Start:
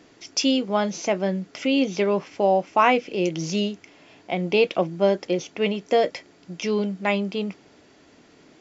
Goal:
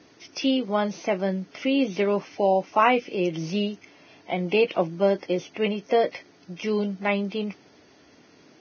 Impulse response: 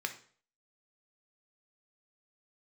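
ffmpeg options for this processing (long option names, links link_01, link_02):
-filter_complex "[0:a]acrossover=split=3800[link_01][link_02];[link_02]acompressor=threshold=-49dB:ratio=4:attack=1:release=60[link_03];[link_01][link_03]amix=inputs=2:normalize=0,volume=-1.5dB" -ar 16000 -c:a libvorbis -b:a 16k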